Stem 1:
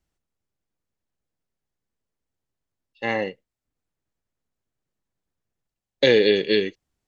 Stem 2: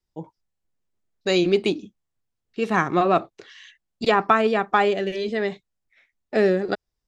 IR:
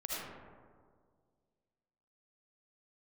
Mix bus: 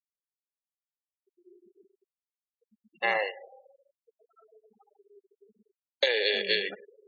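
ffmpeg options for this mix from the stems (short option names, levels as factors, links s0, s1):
-filter_complex "[0:a]highpass=f=580:w=0.5412,highpass=f=580:w=1.3066,acompressor=threshold=0.0631:ratio=12,volume=1.26,asplit=3[s0][s1][s2];[s1]volume=0.133[s3];[1:a]acompressor=threshold=0.1:ratio=10,volume=0.133,asplit=2[s4][s5];[s5]volume=0.133[s6];[s2]apad=whole_len=312104[s7];[s4][s7]sidechaingate=range=0.0224:threshold=0.00316:ratio=16:detection=peak[s8];[2:a]atrim=start_sample=2205[s9];[s3][s6]amix=inputs=2:normalize=0[s10];[s10][s9]afir=irnorm=-1:irlink=0[s11];[s0][s8][s11]amix=inputs=3:normalize=0,afftfilt=real='re*gte(hypot(re,im),0.0112)':imag='im*gte(hypot(re,im),0.0112)':win_size=1024:overlap=0.75"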